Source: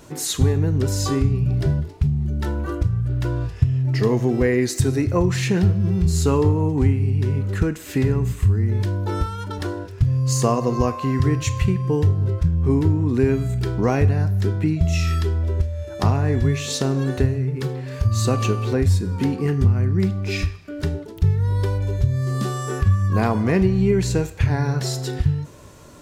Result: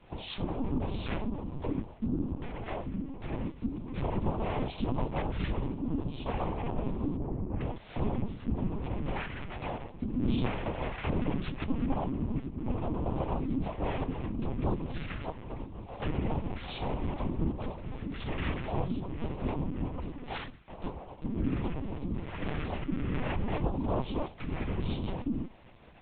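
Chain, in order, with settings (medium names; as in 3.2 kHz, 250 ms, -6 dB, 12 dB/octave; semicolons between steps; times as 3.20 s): 4.96–5.62 s: frequency shift -29 Hz; compression 12:1, threshold -18 dBFS, peak gain reduction 9.5 dB; chorus 1.3 Hz, delay 19.5 ms, depth 3.9 ms; noise-vocoded speech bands 4; 19.89–20.83 s: bass shelf 320 Hz -9.5 dB; LPC vocoder at 8 kHz pitch kept; 7.17–7.61 s: Bessel low-pass 870 Hz, order 2; trim -5.5 dB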